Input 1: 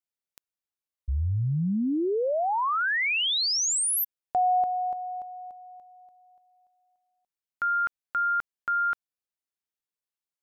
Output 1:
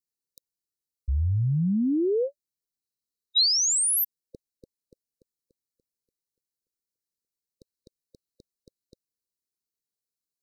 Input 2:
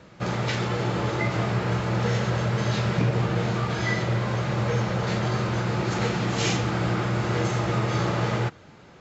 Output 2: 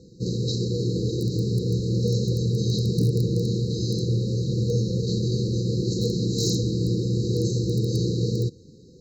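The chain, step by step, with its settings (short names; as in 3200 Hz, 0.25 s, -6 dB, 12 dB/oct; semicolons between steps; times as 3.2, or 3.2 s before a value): in parallel at -11 dB: wrapped overs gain 14.5 dB; on the sum: dynamic EQ 4000 Hz, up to +5 dB, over -47 dBFS, Q 4.3; brick-wall FIR band-stop 530–3800 Hz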